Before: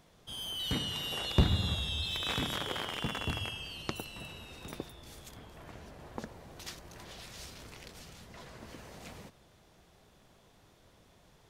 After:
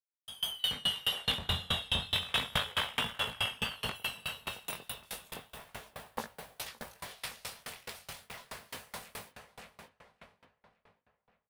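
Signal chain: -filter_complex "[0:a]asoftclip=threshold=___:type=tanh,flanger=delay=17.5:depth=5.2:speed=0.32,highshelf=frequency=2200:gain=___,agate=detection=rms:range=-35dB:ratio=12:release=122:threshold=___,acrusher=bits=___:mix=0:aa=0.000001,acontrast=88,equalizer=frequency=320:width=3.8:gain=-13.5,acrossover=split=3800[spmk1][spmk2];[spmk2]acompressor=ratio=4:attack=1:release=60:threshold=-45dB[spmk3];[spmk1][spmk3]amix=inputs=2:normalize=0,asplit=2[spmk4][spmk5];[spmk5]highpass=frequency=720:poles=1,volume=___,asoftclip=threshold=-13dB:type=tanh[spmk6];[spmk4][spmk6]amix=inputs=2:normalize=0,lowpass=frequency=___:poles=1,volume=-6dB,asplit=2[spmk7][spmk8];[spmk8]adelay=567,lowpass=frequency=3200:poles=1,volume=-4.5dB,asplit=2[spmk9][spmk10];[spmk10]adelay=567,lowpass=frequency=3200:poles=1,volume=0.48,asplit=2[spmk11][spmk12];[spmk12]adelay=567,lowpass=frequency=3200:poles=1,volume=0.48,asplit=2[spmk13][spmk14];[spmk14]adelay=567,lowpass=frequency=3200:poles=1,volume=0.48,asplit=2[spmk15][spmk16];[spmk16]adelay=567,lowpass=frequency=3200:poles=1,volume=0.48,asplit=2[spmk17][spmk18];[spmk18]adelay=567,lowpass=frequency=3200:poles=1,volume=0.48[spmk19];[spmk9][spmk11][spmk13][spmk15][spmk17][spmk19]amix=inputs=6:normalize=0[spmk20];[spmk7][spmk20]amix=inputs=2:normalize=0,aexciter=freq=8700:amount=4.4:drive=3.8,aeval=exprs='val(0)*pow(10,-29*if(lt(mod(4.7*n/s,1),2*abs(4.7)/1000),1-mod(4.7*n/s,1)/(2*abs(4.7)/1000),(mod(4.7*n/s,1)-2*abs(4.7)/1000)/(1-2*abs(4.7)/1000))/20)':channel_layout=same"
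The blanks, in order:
-19.5dB, 3, -53dB, 11, 13dB, 5700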